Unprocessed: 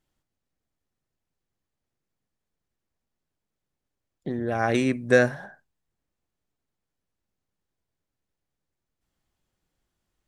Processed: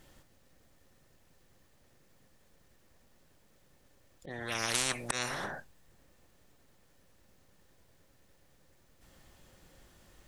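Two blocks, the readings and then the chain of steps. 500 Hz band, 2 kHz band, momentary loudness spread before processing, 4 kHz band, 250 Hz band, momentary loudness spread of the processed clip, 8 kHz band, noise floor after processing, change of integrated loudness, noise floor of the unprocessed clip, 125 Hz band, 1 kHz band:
-18.5 dB, -9.0 dB, 17 LU, +4.5 dB, -18.5 dB, 17 LU, +9.0 dB, -66 dBFS, -10.5 dB, -85 dBFS, -14.0 dB, -8.5 dB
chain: auto swell 0.469 s; small resonant body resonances 540/1800 Hz, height 7 dB; spectral compressor 10:1; gain -4.5 dB

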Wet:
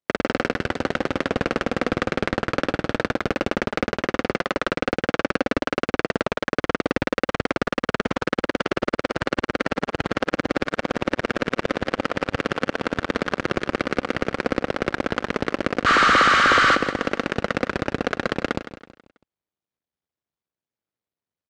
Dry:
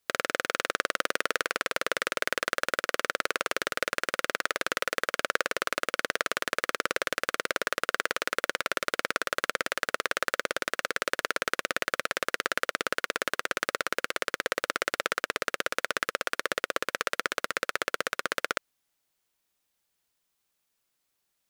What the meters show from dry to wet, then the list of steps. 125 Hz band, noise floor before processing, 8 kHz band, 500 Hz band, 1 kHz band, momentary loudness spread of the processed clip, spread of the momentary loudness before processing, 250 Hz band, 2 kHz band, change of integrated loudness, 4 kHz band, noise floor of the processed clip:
+21.5 dB, -79 dBFS, -4.0 dB, +9.0 dB, +8.0 dB, 8 LU, 2 LU, +18.5 dB, +4.5 dB, +6.5 dB, +3.0 dB, under -85 dBFS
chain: cycle switcher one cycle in 2, muted; HPF 50 Hz 24 dB/oct; notch 2700 Hz, Q 25; spectral repair 15.89–16.72, 1100–9100 Hz after; tilt shelf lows +5.5 dB, about 840 Hz; limiter -15.5 dBFS, peak gain reduction 6.5 dB; sample leveller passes 5; air absorption 120 m; feedback echo 0.163 s, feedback 39%, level -12.5 dB; gain +5 dB

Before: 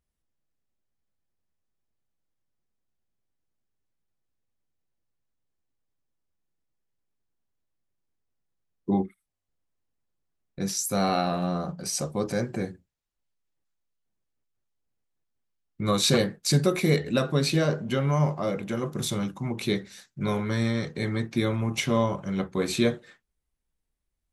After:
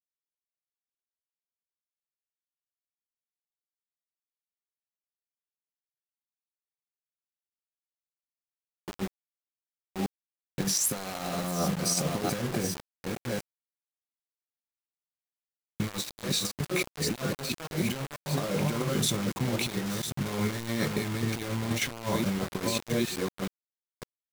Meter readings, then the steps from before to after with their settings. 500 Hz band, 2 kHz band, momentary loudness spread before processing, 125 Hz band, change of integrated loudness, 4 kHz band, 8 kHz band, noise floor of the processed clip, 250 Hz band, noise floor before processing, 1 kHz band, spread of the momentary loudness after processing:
-5.5 dB, -1.5 dB, 8 LU, -4.5 dB, -4.0 dB, -1.5 dB, +1.5 dB, under -85 dBFS, -4.0 dB, -81 dBFS, -4.5 dB, 10 LU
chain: reverse delay 0.559 s, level -10 dB; negative-ratio compressor -30 dBFS, ratio -0.5; bit-crush 6-bit

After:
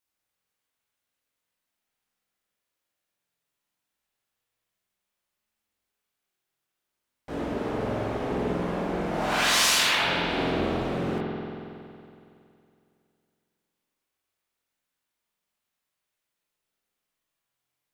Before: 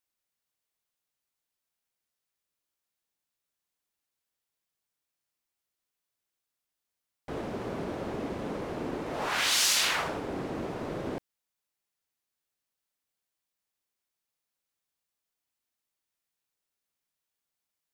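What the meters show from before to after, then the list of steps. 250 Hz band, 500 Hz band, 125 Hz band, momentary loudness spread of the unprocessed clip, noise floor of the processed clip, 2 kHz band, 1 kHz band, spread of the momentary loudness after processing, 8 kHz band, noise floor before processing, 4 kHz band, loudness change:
+6.5 dB, +6.5 dB, +8.0 dB, 14 LU, -84 dBFS, +6.0 dB, +6.5 dB, 17 LU, +1.5 dB, under -85 dBFS, +4.0 dB, +4.5 dB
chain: chorus voices 2, 0.24 Hz, delay 20 ms, depth 3.9 ms; spring tank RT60 2.6 s, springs 46 ms, chirp 60 ms, DRR -3 dB; gain +4.5 dB

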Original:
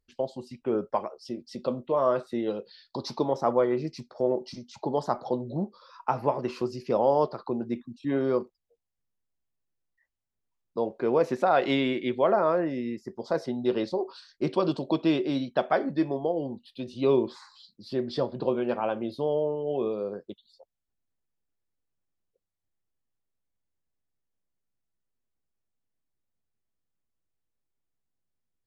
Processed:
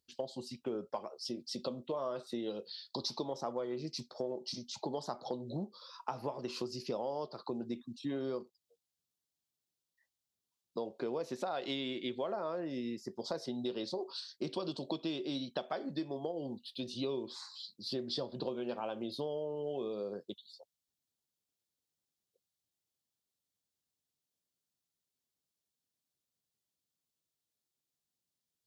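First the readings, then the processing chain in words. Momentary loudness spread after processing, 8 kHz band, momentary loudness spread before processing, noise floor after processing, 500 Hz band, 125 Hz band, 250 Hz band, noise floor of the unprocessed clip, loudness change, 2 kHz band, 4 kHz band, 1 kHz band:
5 LU, n/a, 13 LU, under -85 dBFS, -12.0 dB, -10.5 dB, -10.5 dB, -83 dBFS, -11.5 dB, -13.0 dB, -0.5 dB, -13.0 dB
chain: HPF 100 Hz; resonant high shelf 2800 Hz +8 dB, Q 1.5; compressor, threshold -31 dBFS, peak gain reduction 12.5 dB; gain -3.5 dB

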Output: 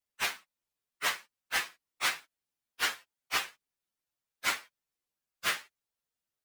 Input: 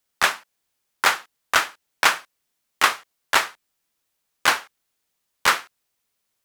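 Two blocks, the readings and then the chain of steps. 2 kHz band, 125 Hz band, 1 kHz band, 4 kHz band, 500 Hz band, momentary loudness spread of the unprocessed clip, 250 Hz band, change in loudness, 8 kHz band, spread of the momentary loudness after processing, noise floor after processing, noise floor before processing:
-11.5 dB, n/a, -15.5 dB, -9.5 dB, -14.5 dB, 11 LU, -12.0 dB, -11.5 dB, -10.0 dB, 10 LU, under -85 dBFS, -77 dBFS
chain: inharmonic rescaling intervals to 119%; gain -7 dB

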